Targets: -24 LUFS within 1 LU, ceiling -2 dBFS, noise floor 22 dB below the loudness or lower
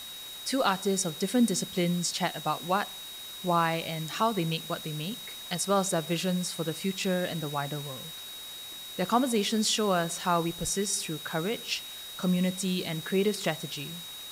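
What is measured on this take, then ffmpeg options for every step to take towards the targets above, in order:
steady tone 3800 Hz; tone level -41 dBFS; noise floor -42 dBFS; noise floor target -52 dBFS; loudness -29.5 LUFS; peak -13.0 dBFS; loudness target -24.0 LUFS
-> -af "bandreject=f=3.8k:w=30"
-af "afftdn=nr=10:nf=-42"
-af "volume=5.5dB"

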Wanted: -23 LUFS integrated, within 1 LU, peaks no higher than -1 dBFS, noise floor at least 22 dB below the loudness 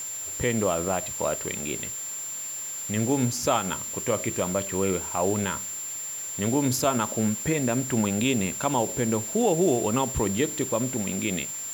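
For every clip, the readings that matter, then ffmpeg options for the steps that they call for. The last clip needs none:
steady tone 7300 Hz; tone level -32 dBFS; noise floor -35 dBFS; noise floor target -48 dBFS; loudness -26.0 LUFS; peak -10.0 dBFS; loudness target -23.0 LUFS
-> -af "bandreject=f=7.3k:w=30"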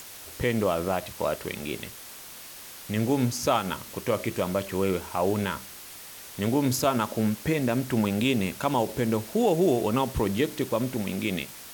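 steady tone none; noise floor -44 dBFS; noise floor target -49 dBFS
-> -af "afftdn=nr=6:nf=-44"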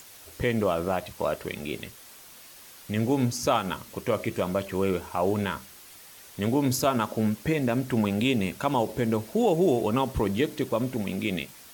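noise floor -49 dBFS; loudness -27.0 LUFS; peak -10.5 dBFS; loudness target -23.0 LUFS
-> -af "volume=4dB"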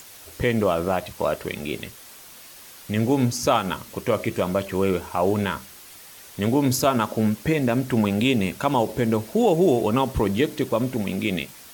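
loudness -23.0 LUFS; peak -6.5 dBFS; noise floor -45 dBFS

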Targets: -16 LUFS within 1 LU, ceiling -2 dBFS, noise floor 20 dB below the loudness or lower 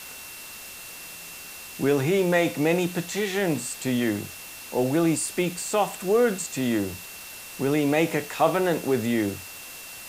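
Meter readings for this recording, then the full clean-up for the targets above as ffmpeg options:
steady tone 2700 Hz; tone level -45 dBFS; noise floor -41 dBFS; noise floor target -45 dBFS; loudness -24.5 LUFS; peak -8.5 dBFS; loudness target -16.0 LUFS
-> -af "bandreject=f=2.7k:w=30"
-af "afftdn=nr=6:nf=-41"
-af "volume=8.5dB,alimiter=limit=-2dB:level=0:latency=1"

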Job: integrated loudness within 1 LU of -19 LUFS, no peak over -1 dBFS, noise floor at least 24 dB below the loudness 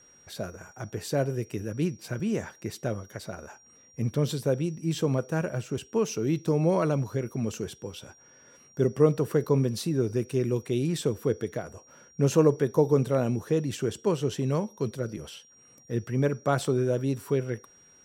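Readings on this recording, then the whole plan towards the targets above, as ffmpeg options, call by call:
steady tone 5700 Hz; tone level -55 dBFS; loudness -28.0 LUFS; peak -8.5 dBFS; loudness target -19.0 LUFS
-> -af "bandreject=f=5.7k:w=30"
-af "volume=9dB,alimiter=limit=-1dB:level=0:latency=1"

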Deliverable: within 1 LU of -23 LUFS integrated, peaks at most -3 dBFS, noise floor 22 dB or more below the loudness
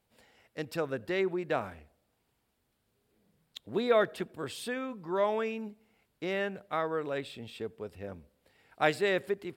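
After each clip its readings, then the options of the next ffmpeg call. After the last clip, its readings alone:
loudness -33.0 LUFS; peak -12.0 dBFS; loudness target -23.0 LUFS
-> -af "volume=10dB,alimiter=limit=-3dB:level=0:latency=1"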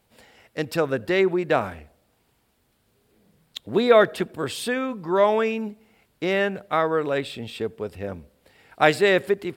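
loudness -23.0 LUFS; peak -3.0 dBFS; noise floor -67 dBFS

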